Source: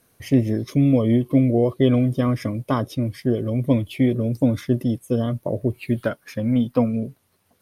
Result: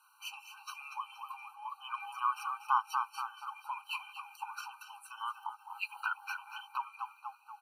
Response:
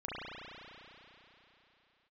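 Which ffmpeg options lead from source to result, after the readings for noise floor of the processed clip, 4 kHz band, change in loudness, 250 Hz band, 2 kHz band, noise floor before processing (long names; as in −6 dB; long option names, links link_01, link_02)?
−63 dBFS, −7.0 dB, −17.5 dB, below −40 dB, −3.0 dB, −64 dBFS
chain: -filter_complex "[0:a]highpass=frequency=450:width=0.5412,highpass=frequency=450:width=1.3066,highshelf=frequency=3200:gain=-9.5,asplit=6[link_01][link_02][link_03][link_04][link_05][link_06];[link_02]adelay=238,afreqshift=51,volume=-10.5dB[link_07];[link_03]adelay=476,afreqshift=102,volume=-17.8dB[link_08];[link_04]adelay=714,afreqshift=153,volume=-25.2dB[link_09];[link_05]adelay=952,afreqshift=204,volume=-32.5dB[link_10];[link_06]adelay=1190,afreqshift=255,volume=-39.8dB[link_11];[link_01][link_07][link_08][link_09][link_10][link_11]amix=inputs=6:normalize=0,asplit=2[link_12][link_13];[link_13]alimiter=limit=-20dB:level=0:latency=1:release=67,volume=1.5dB[link_14];[link_12][link_14]amix=inputs=2:normalize=0,acompressor=threshold=-23dB:ratio=2,tiltshelf=frequency=1400:gain=3,afftfilt=real='re*eq(mod(floor(b*sr/1024/780),2),1)':imag='im*eq(mod(floor(b*sr/1024/780),2),1)':win_size=1024:overlap=0.75"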